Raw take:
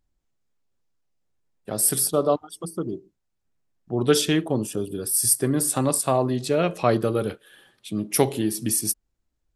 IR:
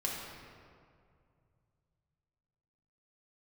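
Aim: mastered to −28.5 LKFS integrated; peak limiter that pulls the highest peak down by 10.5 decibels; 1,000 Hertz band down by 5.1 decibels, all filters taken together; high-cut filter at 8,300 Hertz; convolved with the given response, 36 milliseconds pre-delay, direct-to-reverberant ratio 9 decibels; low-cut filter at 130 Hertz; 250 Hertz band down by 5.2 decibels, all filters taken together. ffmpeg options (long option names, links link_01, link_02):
-filter_complex "[0:a]highpass=130,lowpass=8300,equalizer=frequency=250:width_type=o:gain=-6,equalizer=frequency=1000:width_type=o:gain=-7,alimiter=limit=-19.5dB:level=0:latency=1,asplit=2[link_01][link_02];[1:a]atrim=start_sample=2205,adelay=36[link_03];[link_02][link_03]afir=irnorm=-1:irlink=0,volume=-13dB[link_04];[link_01][link_04]amix=inputs=2:normalize=0,volume=1.5dB"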